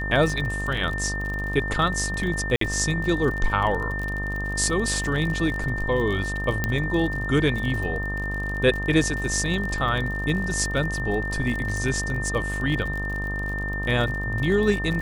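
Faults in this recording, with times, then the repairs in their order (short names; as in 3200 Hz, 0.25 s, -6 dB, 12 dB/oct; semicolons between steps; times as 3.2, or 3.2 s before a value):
buzz 50 Hz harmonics 26 -30 dBFS
crackle 44/s -29 dBFS
tone 1800 Hz -29 dBFS
2.56–2.61 gap 53 ms
6.64 pop -9 dBFS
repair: de-click; de-hum 50 Hz, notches 26; notch 1800 Hz, Q 30; interpolate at 2.56, 53 ms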